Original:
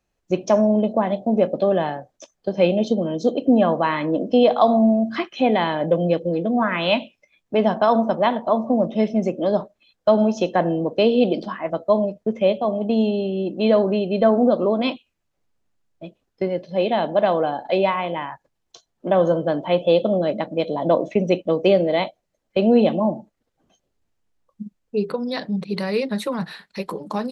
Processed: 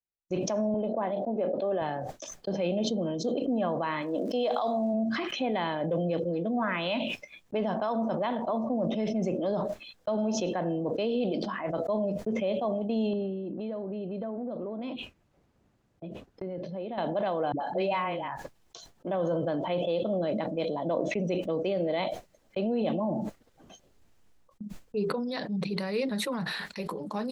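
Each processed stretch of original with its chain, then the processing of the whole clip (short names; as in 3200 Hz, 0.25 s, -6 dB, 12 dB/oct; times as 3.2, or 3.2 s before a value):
0.74–1.82 BPF 280–5600 Hz + high shelf 2400 Hz -8.5 dB
4.01–4.93 tone controls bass -9 dB, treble +7 dB + crackle 180/s -46 dBFS
13.13–16.98 HPF 170 Hz 6 dB/oct + tilt -3 dB/oct + compressor 5:1, threshold -25 dBFS
17.52–18.28 notch 3500 Hz, Q 11 + dispersion highs, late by 86 ms, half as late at 520 Hz
whole clip: gate with hold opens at -32 dBFS; limiter -12.5 dBFS; sustainer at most 24 dB/s; gain -8.5 dB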